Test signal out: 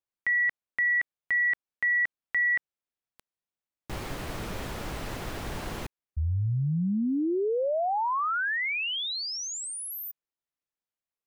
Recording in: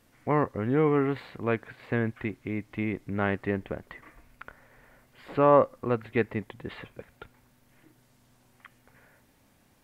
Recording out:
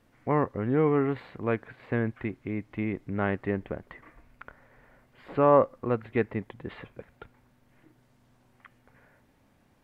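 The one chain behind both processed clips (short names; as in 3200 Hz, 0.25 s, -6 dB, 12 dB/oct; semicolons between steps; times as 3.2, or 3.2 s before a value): high shelf 3700 Hz -11 dB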